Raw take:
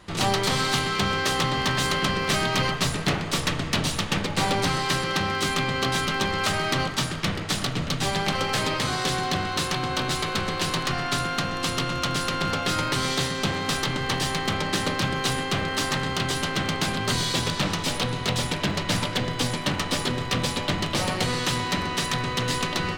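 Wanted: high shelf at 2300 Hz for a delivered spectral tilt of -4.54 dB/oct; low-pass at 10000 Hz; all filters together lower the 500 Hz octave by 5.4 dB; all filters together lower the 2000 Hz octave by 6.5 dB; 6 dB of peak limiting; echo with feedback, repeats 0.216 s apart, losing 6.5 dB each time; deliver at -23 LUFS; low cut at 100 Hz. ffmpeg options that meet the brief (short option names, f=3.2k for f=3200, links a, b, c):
-af "highpass=100,lowpass=10k,equalizer=f=500:t=o:g=-6.5,equalizer=f=2k:t=o:g=-4.5,highshelf=f=2.3k:g=-7,alimiter=limit=-20dB:level=0:latency=1,aecho=1:1:216|432|648|864|1080|1296:0.473|0.222|0.105|0.0491|0.0231|0.0109,volume=6.5dB"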